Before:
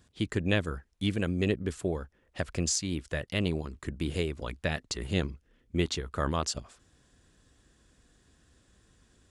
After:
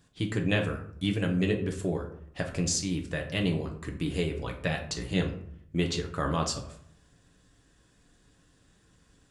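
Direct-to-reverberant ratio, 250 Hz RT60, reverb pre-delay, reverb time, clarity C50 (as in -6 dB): 1.5 dB, 0.80 s, 6 ms, 0.65 s, 9.5 dB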